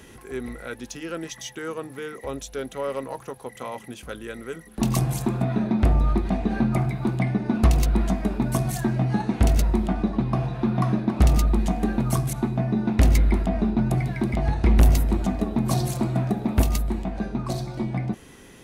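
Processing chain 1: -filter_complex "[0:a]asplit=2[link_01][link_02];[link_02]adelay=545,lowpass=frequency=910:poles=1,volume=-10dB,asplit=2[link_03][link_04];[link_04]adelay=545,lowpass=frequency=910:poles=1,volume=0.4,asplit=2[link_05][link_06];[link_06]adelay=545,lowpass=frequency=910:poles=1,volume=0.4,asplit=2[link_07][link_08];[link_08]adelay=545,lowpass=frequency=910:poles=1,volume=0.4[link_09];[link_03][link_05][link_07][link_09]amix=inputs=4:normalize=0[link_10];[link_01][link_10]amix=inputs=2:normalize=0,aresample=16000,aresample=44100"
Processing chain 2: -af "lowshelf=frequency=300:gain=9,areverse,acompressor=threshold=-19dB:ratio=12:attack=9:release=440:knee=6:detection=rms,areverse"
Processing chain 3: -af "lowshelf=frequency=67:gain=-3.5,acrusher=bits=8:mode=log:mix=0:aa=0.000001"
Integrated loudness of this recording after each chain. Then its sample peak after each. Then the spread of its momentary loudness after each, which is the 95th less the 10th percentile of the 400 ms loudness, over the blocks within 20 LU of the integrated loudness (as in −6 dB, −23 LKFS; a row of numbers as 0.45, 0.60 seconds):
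−24.0, −27.0, −25.0 LKFS; −8.5, −12.5, −9.0 dBFS; 14, 7, 14 LU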